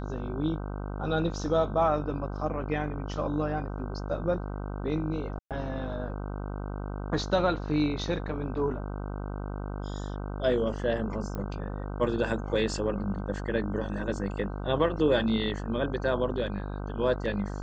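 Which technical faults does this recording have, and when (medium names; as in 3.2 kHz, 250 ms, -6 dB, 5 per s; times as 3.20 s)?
buzz 50 Hz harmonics 31 -35 dBFS
5.39–5.51 s: dropout 117 ms
11.35 s: pop -23 dBFS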